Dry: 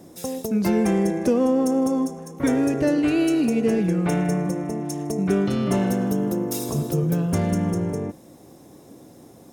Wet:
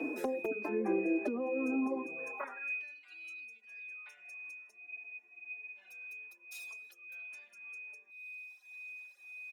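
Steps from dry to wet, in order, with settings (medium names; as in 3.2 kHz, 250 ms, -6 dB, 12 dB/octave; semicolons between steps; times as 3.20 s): high-pass 210 Hz 24 dB/octave; reverb removal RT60 1.7 s; FFT filter 1.7 kHz 0 dB, 3.3 kHz -18 dB, 5.6 kHz -20 dB; peak limiter -22 dBFS, peak gain reduction 10.5 dB; compression 6:1, threshold -41 dBFS, peak gain reduction 14.5 dB; whistle 2.5 kHz -49 dBFS; high-pass sweep 320 Hz -> 3.7 kHz, 2.11–2.85 s; hard clipper -28.5 dBFS, distortion -34 dB; spectral freeze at 4.78 s, 0.99 s; endless flanger 4 ms -1.8 Hz; trim +8.5 dB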